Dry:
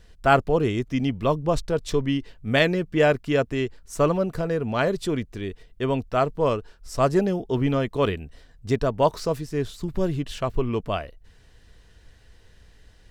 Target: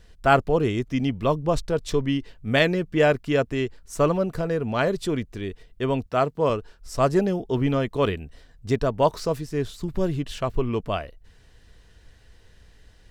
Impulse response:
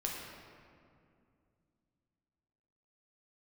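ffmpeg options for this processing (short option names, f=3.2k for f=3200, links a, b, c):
-filter_complex "[0:a]asettb=1/sr,asplit=3[a][b][c];[a]atrim=end=6.064[d];[b]atrim=start=6.06:end=6.5,asetpts=PTS-STARTPTS,afade=t=in:d=0.004:c=qsin,afade=t=out:st=0.436:d=0.004:c=qsin,highpass=89[e];[c]atrim=start=6.496[f];[d][e]acrossfade=d=0.004:c1=hsin:c2=qsin[g];[g][f]acrossfade=d=0.004:c1=qsin:c2=hsin"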